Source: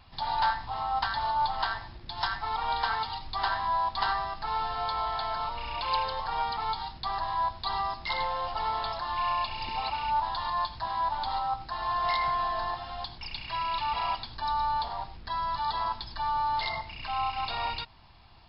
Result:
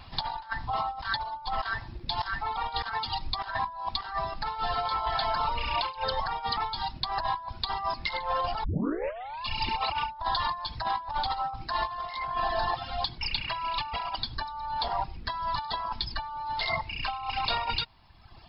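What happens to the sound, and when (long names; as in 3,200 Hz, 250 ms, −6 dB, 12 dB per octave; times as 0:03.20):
0:08.64: tape start 0.81 s
whole clip: reverb reduction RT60 1.2 s; compressor whose output falls as the input rises −35 dBFS, ratio −0.5; level +5 dB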